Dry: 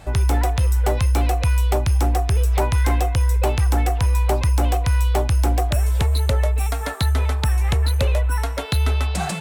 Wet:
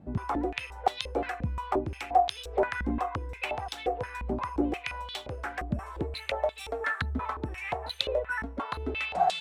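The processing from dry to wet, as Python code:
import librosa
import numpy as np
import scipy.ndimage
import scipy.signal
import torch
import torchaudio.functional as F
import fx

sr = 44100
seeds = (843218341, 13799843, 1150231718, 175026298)

y = fx.filter_held_bandpass(x, sr, hz=5.7, low_hz=220.0, high_hz=3600.0)
y = y * librosa.db_to_amplitude(5.5)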